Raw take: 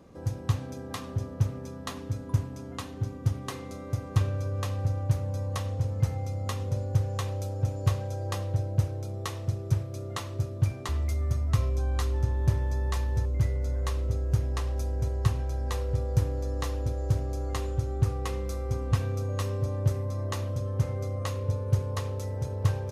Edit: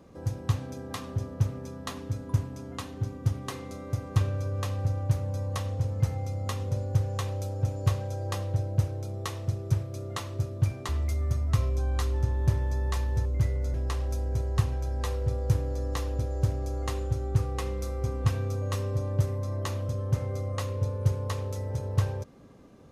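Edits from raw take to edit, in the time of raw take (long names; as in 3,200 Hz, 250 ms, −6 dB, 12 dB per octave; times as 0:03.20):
0:13.74–0:14.41: remove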